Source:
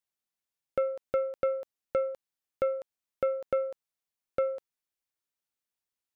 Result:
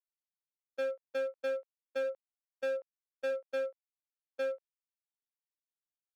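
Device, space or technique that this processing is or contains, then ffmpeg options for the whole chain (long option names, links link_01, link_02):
walkie-talkie: -filter_complex "[0:a]asplit=3[link_01][link_02][link_03];[link_01]afade=type=out:start_time=2.03:duration=0.02[link_04];[link_02]aemphasis=mode=reproduction:type=bsi,afade=type=in:start_time=2.03:duration=0.02,afade=type=out:start_time=3.3:duration=0.02[link_05];[link_03]afade=type=in:start_time=3.3:duration=0.02[link_06];[link_04][link_05][link_06]amix=inputs=3:normalize=0,highpass=410,lowpass=2300,asoftclip=type=hard:threshold=-32dB,agate=range=-34dB:threshold=-35dB:ratio=16:detection=peak,volume=4dB"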